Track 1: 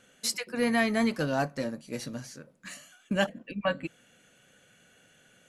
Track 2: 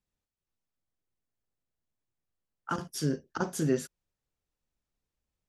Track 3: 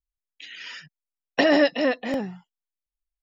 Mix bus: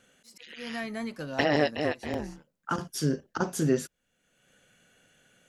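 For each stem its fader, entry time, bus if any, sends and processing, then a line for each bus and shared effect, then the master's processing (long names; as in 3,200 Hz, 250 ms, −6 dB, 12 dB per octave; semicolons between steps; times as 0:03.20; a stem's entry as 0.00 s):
−2.5 dB, 0.00 s, no send, de-essing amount 60%; volume swells 305 ms; downward compressor 1.5 to 1, threshold −40 dBFS, peak gain reduction 7 dB; automatic ducking −20 dB, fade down 0.55 s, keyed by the second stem
+2.5 dB, 0.00 s, no send, no processing
−8.5 dB, 0.00 s, no send, automatic gain control gain up to 9 dB; amplitude modulation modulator 150 Hz, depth 95%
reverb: not used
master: no processing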